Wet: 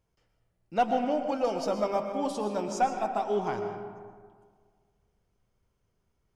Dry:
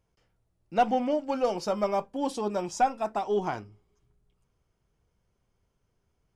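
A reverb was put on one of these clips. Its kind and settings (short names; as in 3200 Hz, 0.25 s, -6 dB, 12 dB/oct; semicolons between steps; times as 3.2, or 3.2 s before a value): digital reverb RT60 1.8 s, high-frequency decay 0.45×, pre-delay 80 ms, DRR 5.5 dB; gain -2 dB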